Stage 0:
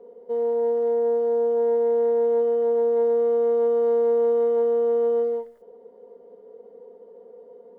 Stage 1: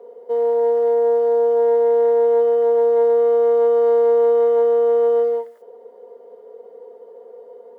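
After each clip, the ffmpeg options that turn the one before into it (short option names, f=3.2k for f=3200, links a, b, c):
-af "highpass=480,volume=8.5dB"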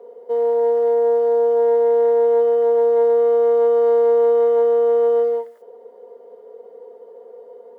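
-af anull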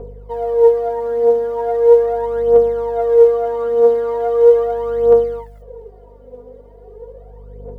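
-af "aeval=exprs='val(0)+0.00708*(sin(2*PI*50*n/s)+sin(2*PI*2*50*n/s)/2+sin(2*PI*3*50*n/s)/3+sin(2*PI*4*50*n/s)/4+sin(2*PI*5*50*n/s)/5)':c=same,aphaser=in_gain=1:out_gain=1:delay=4.2:decay=0.73:speed=0.39:type=triangular,volume=-1dB"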